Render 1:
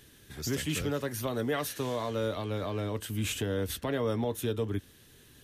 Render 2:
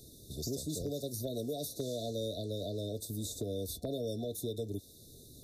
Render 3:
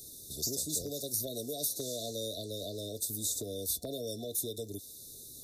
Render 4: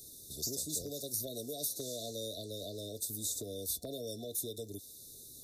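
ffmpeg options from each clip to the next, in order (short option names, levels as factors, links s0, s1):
-filter_complex "[0:a]afftfilt=real='re*(1-between(b*sr/4096,720,3500))':imag='im*(1-between(b*sr/4096,720,3500))':win_size=4096:overlap=0.75,acrossover=split=440|1600[s0][s1][s2];[s0]acompressor=threshold=0.00708:ratio=4[s3];[s1]acompressor=threshold=0.00562:ratio=4[s4];[s2]acompressor=threshold=0.00562:ratio=4[s5];[s3][s4][s5]amix=inputs=3:normalize=0,asoftclip=type=hard:threshold=0.0316,volume=1.5"
-af "bass=f=250:g=-4,treble=f=4000:g=12,volume=0.841"
-af "bandreject=f=850:w=12,volume=0.708"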